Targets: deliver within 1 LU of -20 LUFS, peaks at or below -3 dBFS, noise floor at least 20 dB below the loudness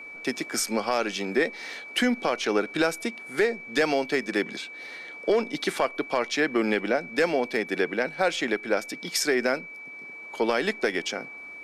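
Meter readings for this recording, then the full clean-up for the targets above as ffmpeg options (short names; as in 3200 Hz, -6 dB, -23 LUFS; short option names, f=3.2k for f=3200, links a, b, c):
steady tone 2300 Hz; tone level -39 dBFS; loudness -26.5 LUFS; peak -11.0 dBFS; loudness target -20.0 LUFS
-> -af "bandreject=f=2.3k:w=30"
-af "volume=6.5dB"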